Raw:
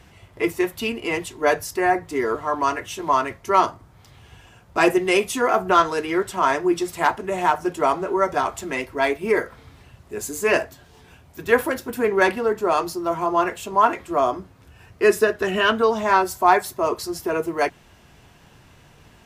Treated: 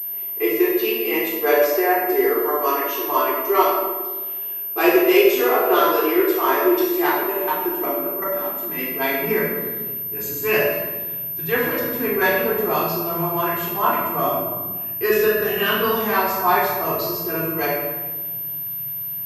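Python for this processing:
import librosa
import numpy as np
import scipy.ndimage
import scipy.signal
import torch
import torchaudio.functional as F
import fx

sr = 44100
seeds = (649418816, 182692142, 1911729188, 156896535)

y = fx.filter_sweep_highpass(x, sr, from_hz=380.0, to_hz=130.0, start_s=6.76, end_s=10.16, q=2.8)
y = fx.level_steps(y, sr, step_db=15, at=(7.31, 8.77), fade=0.02)
y = fx.high_shelf(y, sr, hz=2400.0, db=10.0)
y = fx.comb_fb(y, sr, f0_hz=580.0, decay_s=0.47, harmonics='all', damping=0.0, mix_pct=50)
y = fx.room_shoebox(y, sr, seeds[0], volume_m3=930.0, walls='mixed', distance_m=3.7)
y = fx.pwm(y, sr, carrier_hz=13000.0)
y = y * librosa.db_to_amplitude(-5.0)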